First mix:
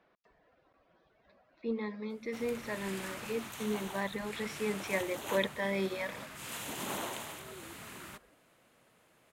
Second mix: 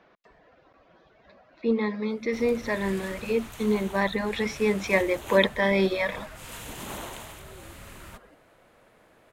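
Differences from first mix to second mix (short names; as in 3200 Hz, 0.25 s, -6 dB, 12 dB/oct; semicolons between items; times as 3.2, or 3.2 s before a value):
speech +10.5 dB; background: remove HPF 160 Hz 12 dB/oct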